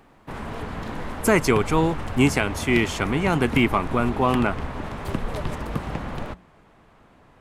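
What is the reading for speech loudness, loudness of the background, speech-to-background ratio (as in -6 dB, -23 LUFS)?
-22.0 LUFS, -32.0 LUFS, 10.0 dB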